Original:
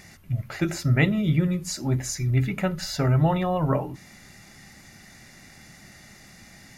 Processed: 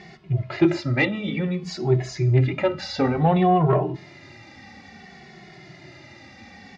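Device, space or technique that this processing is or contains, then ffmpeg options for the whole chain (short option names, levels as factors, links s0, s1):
barber-pole flanger into a guitar amplifier: -filter_complex "[0:a]bandreject=f=214.7:t=h:w=4,bandreject=f=429.4:t=h:w=4,bandreject=f=644.1:t=h:w=4,bandreject=f=858.8:t=h:w=4,bandreject=f=1073.5:t=h:w=4,bandreject=f=1288.2:t=h:w=4,bandreject=f=1502.9:t=h:w=4,bandreject=f=1717.6:t=h:w=4,bandreject=f=1932.3:t=h:w=4,bandreject=f=2147:t=h:w=4,bandreject=f=2361.7:t=h:w=4,bandreject=f=2576.4:t=h:w=4,bandreject=f=2791.1:t=h:w=4,bandreject=f=3005.8:t=h:w=4,bandreject=f=3220.5:t=h:w=4,bandreject=f=3435.2:t=h:w=4,bandreject=f=3649.9:t=h:w=4,bandreject=f=3864.6:t=h:w=4,bandreject=f=4079.3:t=h:w=4,bandreject=f=4294:t=h:w=4,bandreject=f=4508.7:t=h:w=4,bandreject=f=4723.4:t=h:w=4,bandreject=f=4938.1:t=h:w=4,bandreject=f=5152.8:t=h:w=4,bandreject=f=5367.5:t=h:w=4,bandreject=f=5582.2:t=h:w=4,bandreject=f=5796.9:t=h:w=4,bandreject=f=6011.6:t=h:w=4,bandreject=f=6226.3:t=h:w=4,bandreject=f=6441:t=h:w=4,bandreject=f=6655.7:t=h:w=4,bandreject=f=6870.4:t=h:w=4,bandreject=f=7085.1:t=h:w=4,bandreject=f=7299.8:t=h:w=4,bandreject=f=7514.5:t=h:w=4,bandreject=f=7729.2:t=h:w=4,bandreject=f=7943.9:t=h:w=4,bandreject=f=8158.6:t=h:w=4,asettb=1/sr,asplit=3[s0][s1][s2];[s0]atrim=end=0.804[s3];[s1]atrim=start=0.8:end=1.63,asetpts=PTS-STARTPTS,afade=t=in:d=0.004:c=qsin,afade=t=out:st=0.826:d=0.004:c=qsin,lowshelf=f=290:g=-9.5[s4];[s2]atrim=start=1.626[s5];[s3][s4]acrossfade=d=0.004:c1=hsin:c2=qsin[s6];[s6][s5]acrossfade=d=0.004:c1=qsin:c2=hsin,asplit=2[s7][s8];[s8]adelay=2.3,afreqshift=-0.57[s9];[s7][s9]amix=inputs=2:normalize=1,asoftclip=type=tanh:threshold=0.112,highpass=91,equalizer=f=370:t=q:w=4:g=8,equalizer=f=760:t=q:w=4:g=5,equalizer=f=1500:t=q:w=4:g=-4,lowpass=f=4500:w=0.5412,lowpass=f=4500:w=1.3066,volume=2.37"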